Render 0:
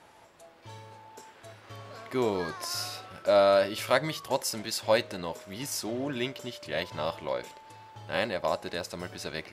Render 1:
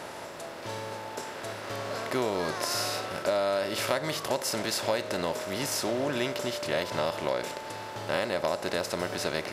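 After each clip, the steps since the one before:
compressor on every frequency bin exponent 0.6
downward compressor 6 to 1, threshold −24 dBFS, peak gain reduction 8 dB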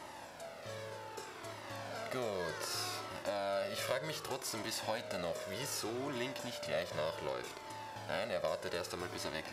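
flanger whose copies keep moving one way falling 0.65 Hz
level −4.5 dB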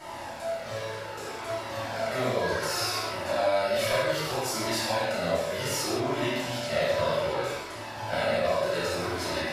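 convolution reverb, pre-delay 3 ms, DRR −10 dB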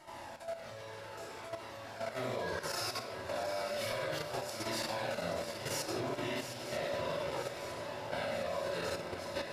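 output level in coarse steps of 10 dB
feedback echo with a long and a short gap by turns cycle 949 ms, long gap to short 3 to 1, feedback 61%, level −10.5 dB
level −7 dB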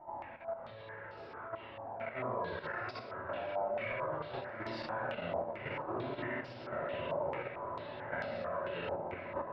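high-frequency loss of the air 480 metres
low-pass on a step sequencer 4.5 Hz 830–5,000 Hz
level −1.5 dB

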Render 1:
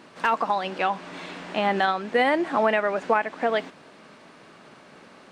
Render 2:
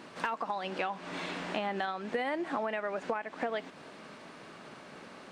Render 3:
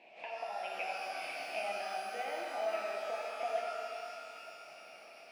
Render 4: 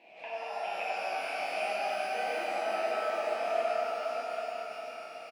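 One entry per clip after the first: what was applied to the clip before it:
downward compressor 6 to 1, threshold −31 dBFS, peak gain reduction 14.5 dB
pair of resonant band-passes 1,300 Hz, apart 1.8 octaves; reverb with rising layers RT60 2.7 s, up +12 semitones, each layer −8 dB, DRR −2.5 dB
single-tap delay 731 ms −6.5 dB; rectangular room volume 210 cubic metres, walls hard, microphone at 0.66 metres

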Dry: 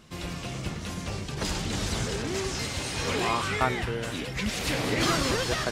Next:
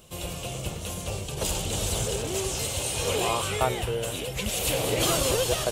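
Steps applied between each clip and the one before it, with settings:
drawn EQ curve 110 Hz 0 dB, 260 Hz −8 dB, 520 Hz +5 dB, 1,900 Hz −10 dB, 2,900 Hz +3 dB, 5,000 Hz −4 dB, 7,600 Hz +7 dB, 15,000 Hz +14 dB
level +1.5 dB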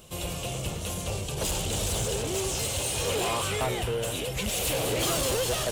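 soft clipping −25 dBFS, distortion −11 dB
level +2 dB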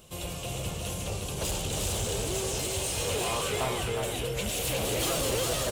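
single-tap delay 360 ms −4 dB
level −3 dB

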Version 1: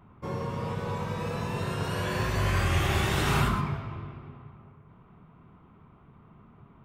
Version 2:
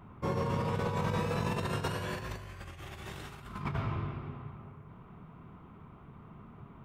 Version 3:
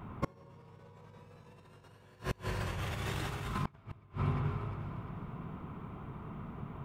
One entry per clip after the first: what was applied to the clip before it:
compressor whose output falls as the input rises −33 dBFS, ratio −0.5; level −1.5 dB
on a send: delay that swaps between a low-pass and a high-pass 176 ms, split 940 Hz, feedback 65%, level −5 dB; on the sum: gate with flip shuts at −25 dBFS, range −31 dB; level +5.5 dB

